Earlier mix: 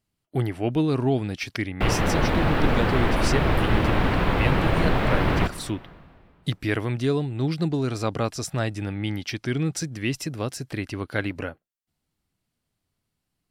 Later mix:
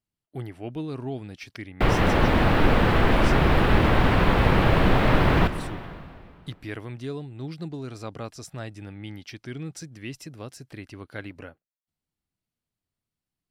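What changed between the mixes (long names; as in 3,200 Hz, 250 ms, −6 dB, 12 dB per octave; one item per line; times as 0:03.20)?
speech −10.0 dB
background: send +7.5 dB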